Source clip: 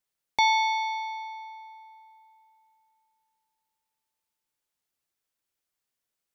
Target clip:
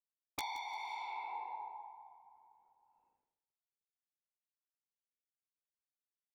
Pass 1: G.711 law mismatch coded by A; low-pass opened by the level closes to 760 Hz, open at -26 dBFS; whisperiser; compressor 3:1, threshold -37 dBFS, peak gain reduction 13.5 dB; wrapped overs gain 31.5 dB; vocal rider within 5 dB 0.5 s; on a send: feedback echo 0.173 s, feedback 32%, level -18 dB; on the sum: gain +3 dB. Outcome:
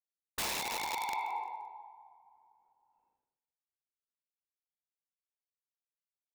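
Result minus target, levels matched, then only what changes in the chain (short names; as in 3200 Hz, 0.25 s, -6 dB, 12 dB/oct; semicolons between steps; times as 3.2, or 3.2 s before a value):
compressor: peak gain reduction -7.5 dB
change: compressor 3:1, threshold -48 dBFS, peak gain reduction 21 dB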